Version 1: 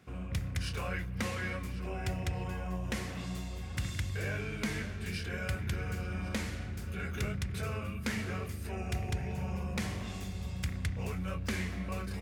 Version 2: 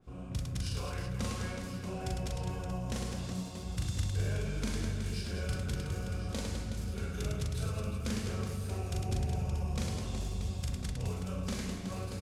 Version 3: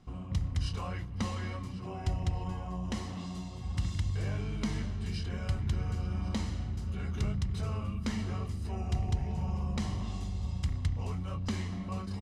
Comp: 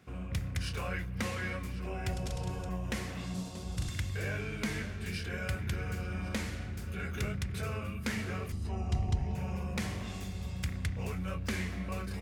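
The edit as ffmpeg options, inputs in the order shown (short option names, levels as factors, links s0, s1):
-filter_complex "[1:a]asplit=2[s0][s1];[0:a]asplit=4[s2][s3][s4][s5];[s2]atrim=end=2.132[s6];[s0]atrim=start=2.128:end=2.692[s7];[s3]atrim=start=2.688:end=3.342[s8];[s1]atrim=start=3.338:end=3.892[s9];[s4]atrim=start=3.888:end=8.522[s10];[2:a]atrim=start=8.518:end=9.352[s11];[s5]atrim=start=9.348[s12];[s6][s7]acrossfade=d=0.004:c1=hsin:c2=hsin[s13];[s13][s8]acrossfade=d=0.004:c1=hsin:c2=hsin[s14];[s14][s9]acrossfade=d=0.004:c1=hsin:c2=hsin[s15];[s15][s10]acrossfade=d=0.004:c1=hsin:c2=hsin[s16];[s16][s11]acrossfade=d=0.004:c1=hsin:c2=hsin[s17];[s17][s12]acrossfade=d=0.004:c1=hsin:c2=hsin"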